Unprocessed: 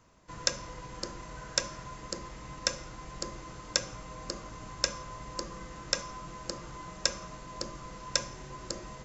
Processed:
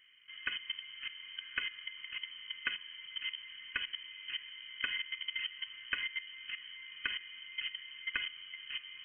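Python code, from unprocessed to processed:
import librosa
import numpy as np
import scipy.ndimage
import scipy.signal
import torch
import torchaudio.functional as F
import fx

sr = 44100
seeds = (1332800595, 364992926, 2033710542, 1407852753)

y = fx.level_steps(x, sr, step_db=14)
y = fx.fixed_phaser(y, sr, hz=990.0, stages=4)
y = fx.freq_invert(y, sr, carrier_hz=3100)
y = y * librosa.db_to_amplitude(7.5)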